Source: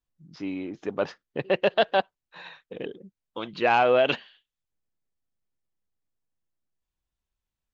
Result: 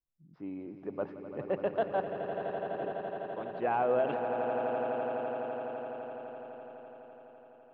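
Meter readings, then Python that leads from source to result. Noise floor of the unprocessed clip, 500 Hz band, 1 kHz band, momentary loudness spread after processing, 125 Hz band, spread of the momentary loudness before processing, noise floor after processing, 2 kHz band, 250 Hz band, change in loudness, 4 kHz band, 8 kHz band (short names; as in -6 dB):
under -85 dBFS, -5.0 dB, -5.5 dB, 16 LU, -4.5 dB, 22 LU, -57 dBFS, -12.0 dB, -5.0 dB, -9.5 dB, under -20 dB, n/a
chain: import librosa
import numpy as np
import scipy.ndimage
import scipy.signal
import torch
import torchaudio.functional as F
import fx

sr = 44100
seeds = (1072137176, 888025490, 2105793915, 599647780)

p1 = scipy.signal.sosfilt(scipy.signal.butter(2, 1200.0, 'lowpass', fs=sr, output='sos'), x)
p2 = p1 + fx.echo_swell(p1, sr, ms=84, loudest=8, wet_db=-11, dry=0)
y = p2 * 10.0 ** (-8.0 / 20.0)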